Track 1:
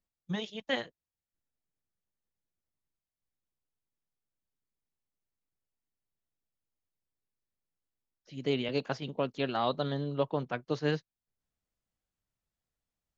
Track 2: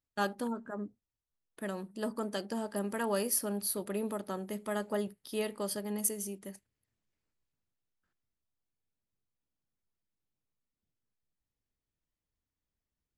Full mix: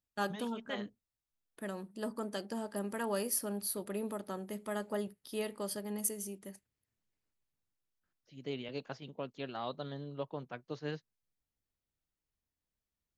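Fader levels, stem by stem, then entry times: -9.5 dB, -3.0 dB; 0.00 s, 0.00 s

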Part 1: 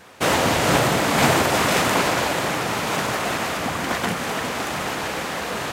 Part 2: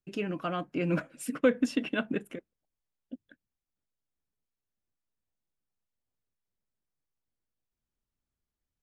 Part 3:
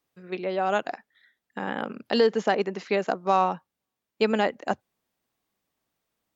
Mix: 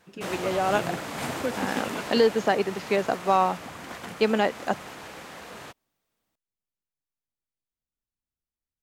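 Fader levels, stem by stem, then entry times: -15.0 dB, -6.5 dB, +0.5 dB; 0.00 s, 0.00 s, 0.00 s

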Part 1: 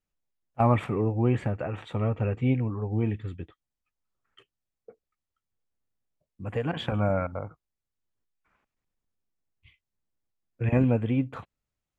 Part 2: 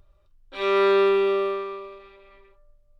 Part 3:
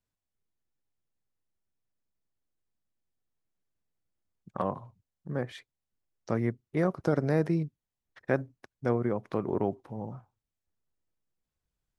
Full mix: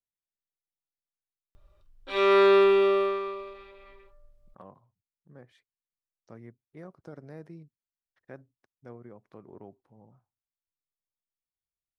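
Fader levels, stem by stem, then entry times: mute, 0.0 dB, -18.5 dB; mute, 1.55 s, 0.00 s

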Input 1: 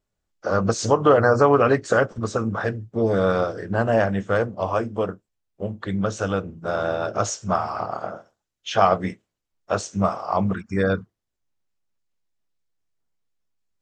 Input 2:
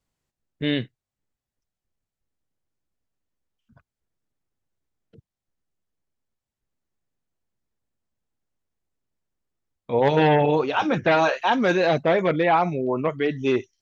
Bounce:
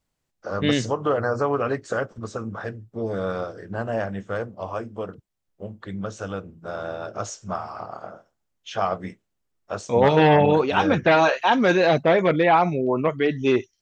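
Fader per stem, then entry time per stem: -7.0 dB, +2.0 dB; 0.00 s, 0.00 s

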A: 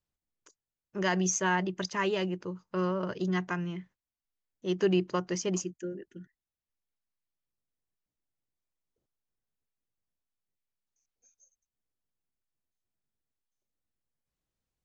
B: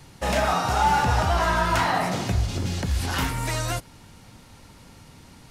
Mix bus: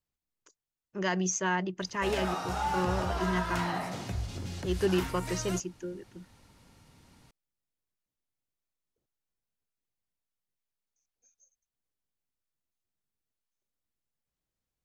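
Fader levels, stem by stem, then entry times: -1.5 dB, -11.0 dB; 0.00 s, 1.80 s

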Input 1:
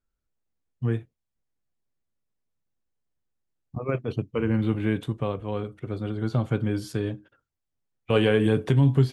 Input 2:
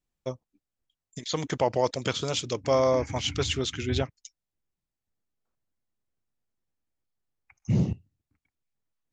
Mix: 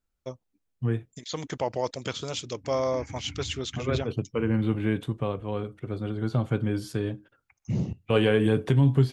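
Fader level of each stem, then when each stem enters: -1.0 dB, -4.0 dB; 0.00 s, 0.00 s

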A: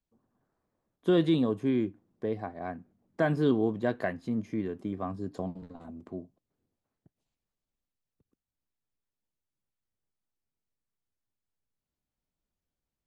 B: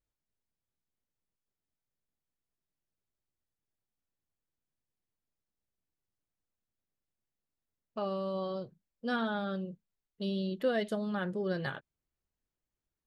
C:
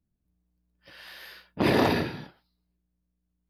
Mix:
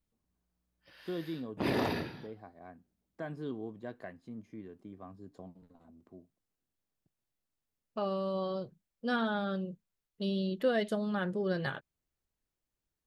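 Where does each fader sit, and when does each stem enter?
-14.0 dB, +1.0 dB, -9.0 dB; 0.00 s, 0.00 s, 0.00 s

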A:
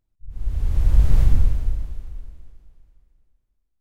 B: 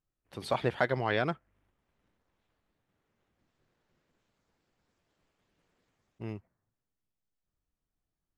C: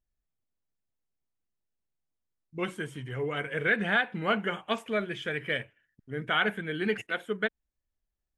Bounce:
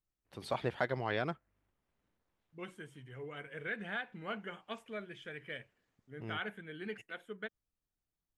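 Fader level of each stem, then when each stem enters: mute, -5.5 dB, -13.5 dB; mute, 0.00 s, 0.00 s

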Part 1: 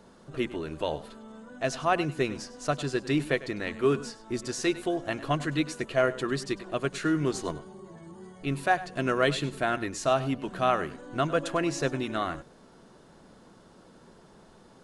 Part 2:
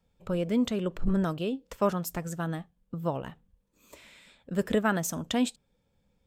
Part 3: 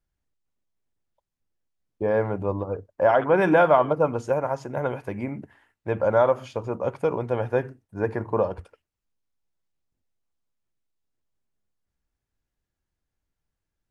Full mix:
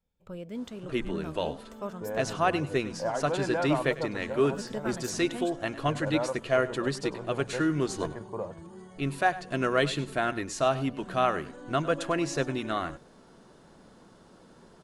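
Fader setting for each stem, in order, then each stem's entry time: -0.5 dB, -11.0 dB, -12.5 dB; 0.55 s, 0.00 s, 0.00 s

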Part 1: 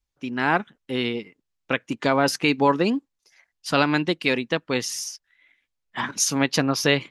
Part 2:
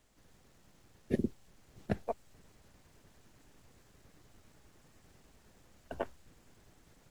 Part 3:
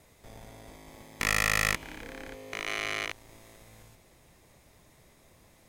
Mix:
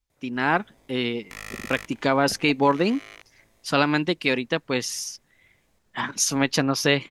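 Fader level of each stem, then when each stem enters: -0.5 dB, -7.0 dB, -11.5 dB; 0.00 s, 0.40 s, 0.10 s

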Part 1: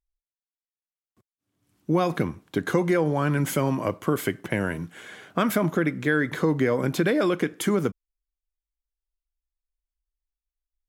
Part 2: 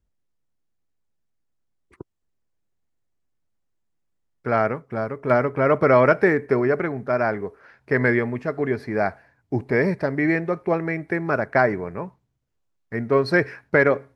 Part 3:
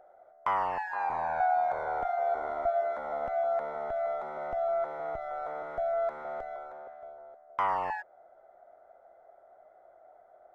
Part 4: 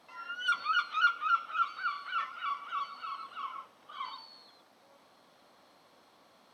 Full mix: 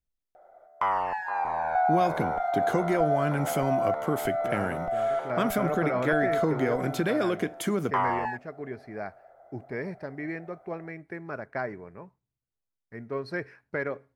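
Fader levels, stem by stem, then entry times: -4.5 dB, -14.0 dB, +2.5 dB, mute; 0.00 s, 0.00 s, 0.35 s, mute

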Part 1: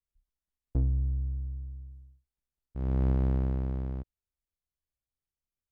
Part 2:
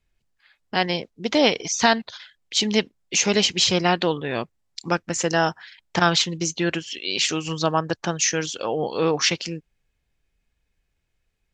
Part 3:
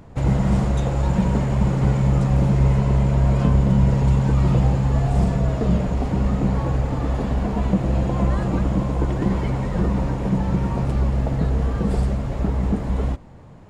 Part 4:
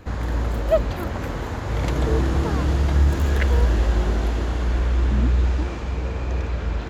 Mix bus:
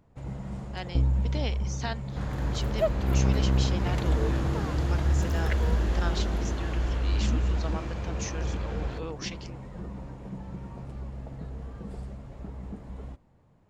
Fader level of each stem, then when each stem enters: +2.5 dB, -17.0 dB, -18.0 dB, -7.0 dB; 0.20 s, 0.00 s, 0.00 s, 2.10 s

